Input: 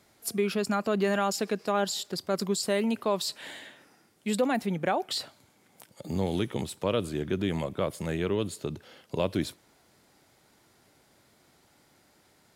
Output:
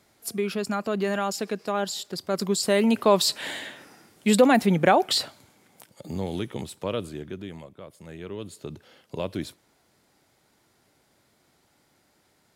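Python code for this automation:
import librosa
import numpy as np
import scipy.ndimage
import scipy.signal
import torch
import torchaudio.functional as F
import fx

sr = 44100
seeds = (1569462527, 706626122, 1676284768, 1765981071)

y = fx.gain(x, sr, db=fx.line((2.11, 0.0), (3.13, 9.0), (5.05, 9.0), (6.18, -1.5), (6.98, -1.5), (7.82, -14.5), (8.74, -2.5)))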